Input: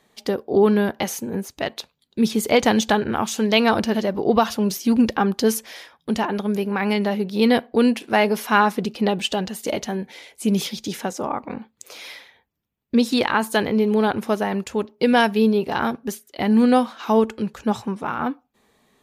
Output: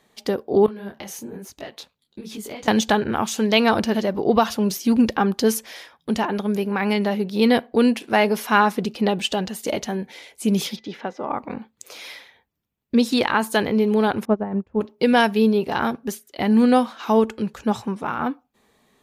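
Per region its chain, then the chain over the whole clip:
0:00.66–0:02.68: downward compressor 10 to 1, threshold −26 dBFS + micro pitch shift up and down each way 40 cents
0:10.75–0:11.28: high-pass filter 310 Hz 6 dB per octave + steady tone 2,000 Hz −56 dBFS + high-frequency loss of the air 280 metres
0:14.25–0:14.81: low-pass filter 1,200 Hz + low-shelf EQ 250 Hz +11 dB + expander for the loud parts 2.5 to 1, over −27 dBFS
whole clip: no processing

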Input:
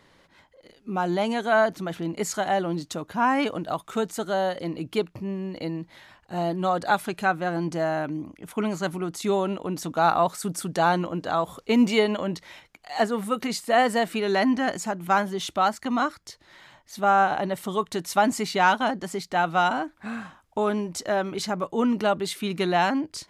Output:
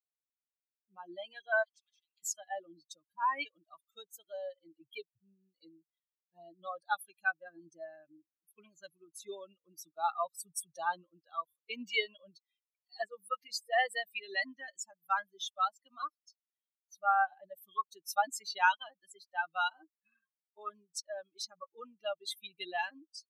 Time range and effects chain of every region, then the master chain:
0:01.63–0:02.23: downward compressor 2.5 to 1, threshold −37 dBFS + high-frequency loss of the air 110 metres + every bin compressed towards the loudest bin 4 to 1
whole clip: spectral dynamics exaggerated over time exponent 3; high-pass filter 970 Hz 12 dB per octave

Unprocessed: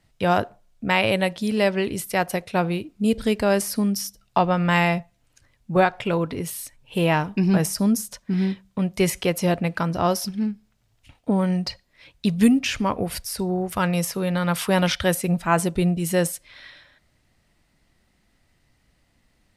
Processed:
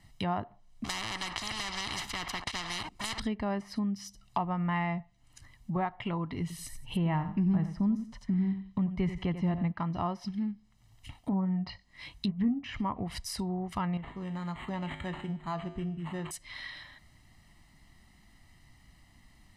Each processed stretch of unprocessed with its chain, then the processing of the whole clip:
0:00.84–0:03.20: leveller curve on the samples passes 3 + every bin compressed towards the loudest bin 10 to 1
0:06.41–0:09.72: low-shelf EQ 180 Hz +10.5 dB + repeating echo 88 ms, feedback 17%, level −12 dB
0:11.30–0:12.64: treble cut that deepens with the level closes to 1,100 Hz, closed at −15.5 dBFS + double-tracking delay 21 ms −7 dB
0:13.97–0:16.31: tuned comb filter 52 Hz, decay 0.75 s, harmonics odd, mix 70% + linearly interpolated sample-rate reduction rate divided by 8×
whole clip: treble cut that deepens with the level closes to 1,900 Hz, closed at −18 dBFS; comb filter 1 ms, depth 67%; downward compressor 2 to 1, threshold −43 dBFS; level +2 dB

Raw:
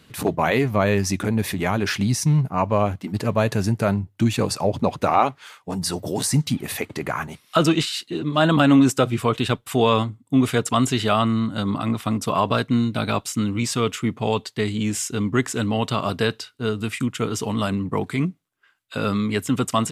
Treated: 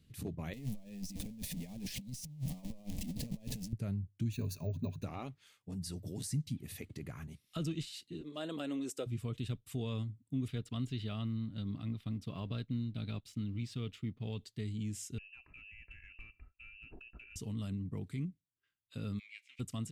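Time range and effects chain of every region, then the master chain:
0:00.53–0:03.73: converter with a step at zero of −20 dBFS + phaser with its sweep stopped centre 370 Hz, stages 6 + compressor whose output falls as the input rises −26 dBFS, ratio −0.5
0:04.32–0:05.04: EQ curve with evenly spaced ripples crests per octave 1.5, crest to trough 12 dB + bad sample-rate conversion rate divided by 2×, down filtered, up hold
0:08.21–0:09.06: high-pass with resonance 450 Hz, resonance Q 2 + parametric band 9,100 Hz +3 dB 0.6 octaves
0:10.48–0:14.38: mu-law and A-law mismatch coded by A + high shelf with overshoot 5,300 Hz −8.5 dB, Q 1.5
0:15.18–0:17.36: voice inversion scrambler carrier 2,800 Hz + comb filter 3 ms, depth 31% + downward compressor 20 to 1, threshold −29 dBFS
0:19.18–0:19.59: spectral envelope flattened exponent 0.6 + four-pole ladder band-pass 2,400 Hz, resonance 85%
whole clip: guitar amp tone stack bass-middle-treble 10-0-1; notch filter 1,500 Hz, Q 22; downward compressor 1.5 to 1, threshold −42 dBFS; level +3 dB

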